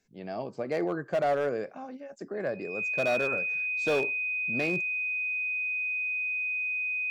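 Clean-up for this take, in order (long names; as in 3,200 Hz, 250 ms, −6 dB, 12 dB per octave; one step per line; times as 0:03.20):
clipped peaks rebuilt −21.5 dBFS
notch filter 2,500 Hz, Q 30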